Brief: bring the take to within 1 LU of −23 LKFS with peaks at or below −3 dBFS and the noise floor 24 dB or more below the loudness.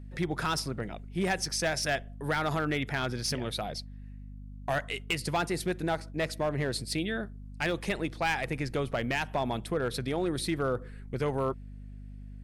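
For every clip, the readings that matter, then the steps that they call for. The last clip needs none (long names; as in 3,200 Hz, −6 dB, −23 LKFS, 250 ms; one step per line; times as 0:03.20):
share of clipped samples 1.0%; peaks flattened at −22.5 dBFS; mains hum 50 Hz; hum harmonics up to 250 Hz; level of the hum −42 dBFS; integrated loudness −31.5 LKFS; sample peak −22.5 dBFS; target loudness −23.0 LKFS
→ clipped peaks rebuilt −22.5 dBFS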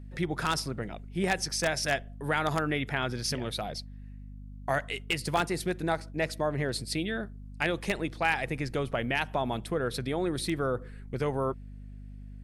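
share of clipped samples 0.0%; mains hum 50 Hz; hum harmonics up to 250 Hz; level of the hum −42 dBFS
→ mains-hum notches 50/100/150/200/250 Hz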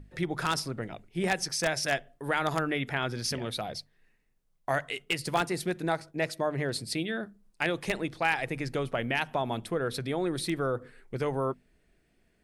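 mains hum none found; integrated loudness −31.0 LKFS; sample peak −12.5 dBFS; target loudness −23.0 LKFS
→ level +8 dB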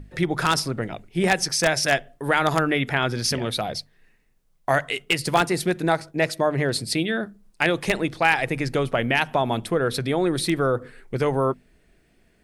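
integrated loudness −23.0 LKFS; sample peak −4.5 dBFS; background noise floor −62 dBFS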